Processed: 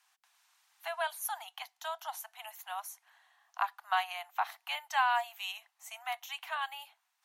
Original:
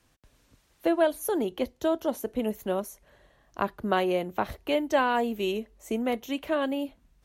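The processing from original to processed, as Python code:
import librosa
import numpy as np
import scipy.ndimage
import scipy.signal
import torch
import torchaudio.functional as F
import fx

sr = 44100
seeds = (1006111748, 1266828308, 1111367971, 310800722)

y = scipy.signal.sosfilt(scipy.signal.butter(16, 720.0, 'highpass', fs=sr, output='sos'), x)
y = F.gain(torch.from_numpy(y), -1.5).numpy()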